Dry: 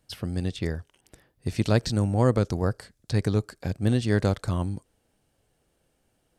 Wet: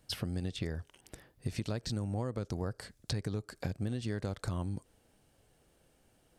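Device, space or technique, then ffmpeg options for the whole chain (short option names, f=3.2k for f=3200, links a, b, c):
serial compression, leveller first: -af "acompressor=threshold=-28dB:ratio=2,acompressor=threshold=-35dB:ratio=6,volume=2.5dB"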